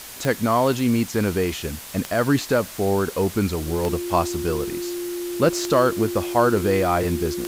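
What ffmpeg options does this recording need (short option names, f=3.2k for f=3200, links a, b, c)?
-af "adeclick=t=4,bandreject=f=350:w=30,afwtdn=0.014"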